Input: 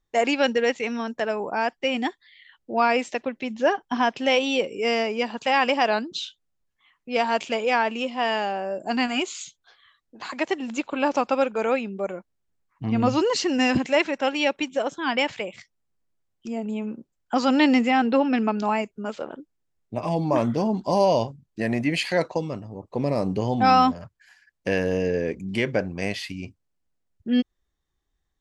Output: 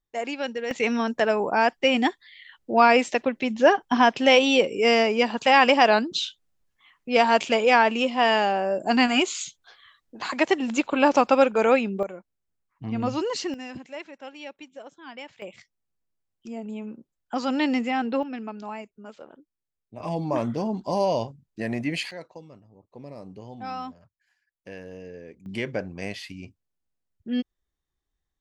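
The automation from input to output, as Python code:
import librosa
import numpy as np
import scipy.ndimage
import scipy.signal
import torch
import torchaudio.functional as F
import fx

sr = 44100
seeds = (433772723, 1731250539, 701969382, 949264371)

y = fx.gain(x, sr, db=fx.steps((0.0, -8.5), (0.71, 4.0), (12.03, -5.5), (13.54, -17.0), (15.42, -5.5), (18.23, -12.0), (20.0, -4.0), (22.11, -17.0), (25.46, -5.5)))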